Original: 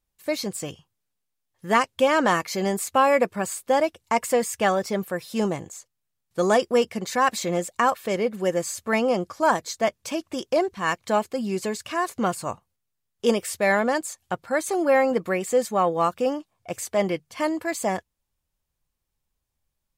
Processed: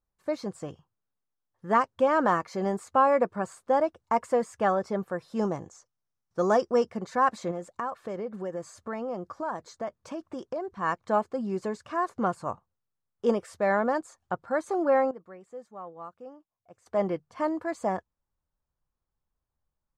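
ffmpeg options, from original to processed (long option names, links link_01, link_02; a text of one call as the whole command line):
ffmpeg -i in.wav -filter_complex "[0:a]asettb=1/sr,asplit=3[link_01][link_02][link_03];[link_01]atrim=end=5.394[link_04];[link_02]atrim=start=5.39:end=6.9,asetpts=PTS-STARTPTS,afade=type=in:duration=0.004:curve=qsin,afade=type=out:start_time=1.506:duration=0.004:curve=qsin,equalizer=frequency=5700:width=3.6:gain=12[link_05];[link_03]atrim=start=6.896[link_06];[link_04][link_05]acrossfade=duration=0.004:curve1=hsin:curve2=qsin[link_07];[link_07][link_06]acrossfade=duration=0.004:curve1=qsin:curve2=hsin,asettb=1/sr,asplit=3[link_08][link_09][link_10];[link_08]atrim=end=7.514[link_11];[link_09]atrim=start=7.51:end=10.71,asetpts=PTS-STARTPTS,afade=type=in:duration=0.004:curve=qsin,afade=type=out:start_time=3.196:duration=0.004:curve=qsin,acompressor=threshold=-28dB:ratio=3:attack=3.2:release=140:knee=1:detection=peak[link_12];[link_10]atrim=start=10.706[link_13];[link_11][link_12]acrossfade=duration=0.004:curve1=hsin:curve2=qsin[link_14];[link_14][link_13]acrossfade=duration=0.004:curve1=qsin:curve2=hsin,asplit=3[link_15][link_16][link_17];[link_15]atrim=end=15.11,asetpts=PTS-STARTPTS,afade=type=out:start_time=14.87:duration=0.24:curve=log:silence=0.133352[link_18];[link_16]atrim=start=15.11:end=16.86,asetpts=PTS-STARTPTS,volume=-17.5dB[link_19];[link_17]atrim=start=16.86,asetpts=PTS-STARTPTS,afade=type=in:duration=0.24:curve=log:silence=0.133352[link_20];[link_18][link_19][link_20]concat=n=3:v=0:a=1,lowpass=7100,highshelf=frequency=1800:width_type=q:width=1.5:gain=-9.5,volume=-4dB" out.wav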